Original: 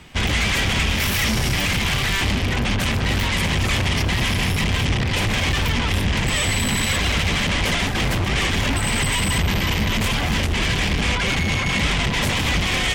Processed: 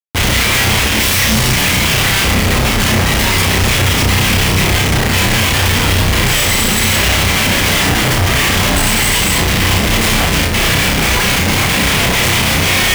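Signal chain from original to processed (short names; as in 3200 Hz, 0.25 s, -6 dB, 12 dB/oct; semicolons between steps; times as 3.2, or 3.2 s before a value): high shelf 4300 Hz +7.5 dB; notches 50/100/150/200/250 Hz; Schmitt trigger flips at -29 dBFS; on a send: flutter echo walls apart 5.5 m, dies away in 0.38 s; on the sum: gain +5.5 dB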